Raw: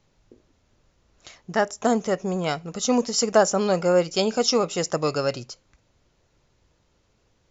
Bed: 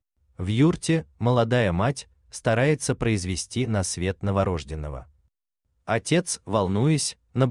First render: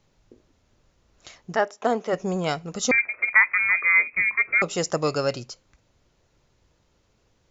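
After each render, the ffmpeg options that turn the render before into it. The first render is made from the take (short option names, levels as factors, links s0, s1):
-filter_complex "[0:a]asplit=3[s0][s1][s2];[s0]afade=t=out:st=1.55:d=0.02[s3];[s1]highpass=320,lowpass=3700,afade=t=in:st=1.55:d=0.02,afade=t=out:st=2.12:d=0.02[s4];[s2]afade=t=in:st=2.12:d=0.02[s5];[s3][s4][s5]amix=inputs=3:normalize=0,asettb=1/sr,asplit=3[s6][s7][s8];[s6]atrim=end=2.914[s9];[s7]atrim=start=2.91:end=4.62,asetpts=PTS-STARTPTS,afade=t=in:d=0.004:c=qsin,afade=t=out:st=1.706:d=0.004:c=qsin,lowpass=f=2200:t=q:w=0.5098,lowpass=f=2200:t=q:w=0.6013,lowpass=f=2200:t=q:w=0.9,lowpass=f=2200:t=q:w=2.563,afreqshift=-2600[s10];[s8]atrim=start=4.616[s11];[s9][s10]acrossfade=d=0.004:c1=hsin:c2=qsin[s12];[s12][s11]acrossfade=d=0.004:c1=qsin:c2=hsin"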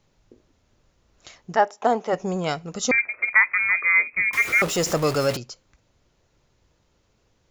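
-filter_complex "[0:a]asettb=1/sr,asplit=3[s0][s1][s2];[s0]atrim=end=1.574[s3];[s1]atrim=start=1.57:end=2.26,asetpts=PTS-STARTPTS,afade=t=in:d=0.004:c=qsin,afade=t=out:st=0.686:d=0.004:c=qsin,equalizer=f=830:w=3.3:g=8[s4];[s2]atrim=start=2.256[s5];[s3][s4]acrossfade=d=0.004:c1=hsin:c2=qsin[s6];[s6][s5]acrossfade=d=0.004:c1=qsin:c2=hsin,asettb=1/sr,asplit=3[s7][s8][s9];[s7]atrim=end=4.334[s10];[s8]atrim=start=4.33:end=5.37,asetpts=PTS-STARTPTS,afade=t=in:d=0.004:c=qsin,afade=t=out:st=1.036:d=0.004:c=qsin,aeval=exprs='val(0)+0.5*0.0531*sgn(val(0))':c=same[s11];[s9]atrim=start=5.366[s12];[s10][s11]acrossfade=d=0.004:c1=hsin:c2=qsin[s13];[s13][s12]acrossfade=d=0.004:c1=qsin:c2=hsin"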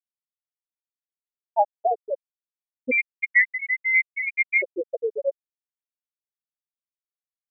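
-af "afftfilt=real='re*gte(hypot(re,im),0.708)':imag='im*gte(hypot(re,im),0.708)':win_size=1024:overlap=0.75"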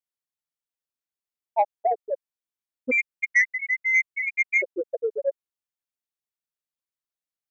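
-af "asoftclip=type=tanh:threshold=0.299"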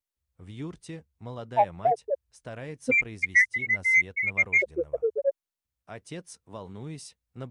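-filter_complex "[1:a]volume=0.126[s0];[0:a][s0]amix=inputs=2:normalize=0"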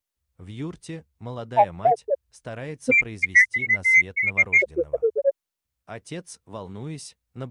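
-af "volume=1.68"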